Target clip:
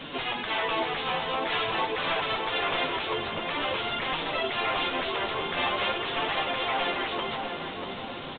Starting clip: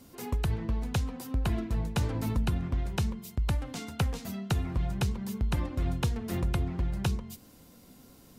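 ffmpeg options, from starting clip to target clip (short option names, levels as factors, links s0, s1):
-filter_complex "[0:a]aexciter=amount=1.8:drive=9.6:freq=2700,afftfilt=real='re*lt(hypot(re,im),0.0355)':imag='im*lt(hypot(re,im),0.0355)':win_size=1024:overlap=0.75,bandreject=f=60:t=h:w=6,bandreject=f=120:t=h:w=6,bandreject=f=180:t=h:w=6,bandreject=f=240:t=h:w=6,bandreject=f=300:t=h:w=6,bandreject=f=360:t=h:w=6,bandreject=f=420:t=h:w=6,asplit=2[s0][s1];[s1]highpass=f=720:p=1,volume=25.1,asoftclip=type=tanh:threshold=0.0891[s2];[s0][s2]amix=inputs=2:normalize=0,lowpass=f=2400:p=1,volume=0.501,flanger=delay=5.9:depth=8.1:regen=26:speed=0.47:shape=triangular,asplit=2[s3][s4];[s4]adelay=641,lowpass=f=1500:p=1,volume=0.596,asplit=2[s5][s6];[s6]adelay=641,lowpass=f=1500:p=1,volume=0.55,asplit=2[s7][s8];[s8]adelay=641,lowpass=f=1500:p=1,volume=0.55,asplit=2[s9][s10];[s10]adelay=641,lowpass=f=1500:p=1,volume=0.55,asplit=2[s11][s12];[s12]adelay=641,lowpass=f=1500:p=1,volume=0.55,asplit=2[s13][s14];[s14]adelay=641,lowpass=f=1500:p=1,volume=0.55,asplit=2[s15][s16];[s16]adelay=641,lowpass=f=1500:p=1,volume=0.55[s17];[s5][s7][s9][s11][s13][s15][s17]amix=inputs=7:normalize=0[s18];[s3][s18]amix=inputs=2:normalize=0,aresample=8000,aresample=44100,volume=2.82"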